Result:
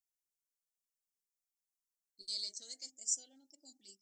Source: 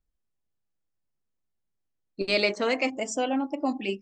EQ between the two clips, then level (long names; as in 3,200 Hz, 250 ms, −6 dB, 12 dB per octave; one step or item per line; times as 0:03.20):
inverse Chebyshev high-pass filter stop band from 2,800 Hz, stop band 40 dB
+2.5 dB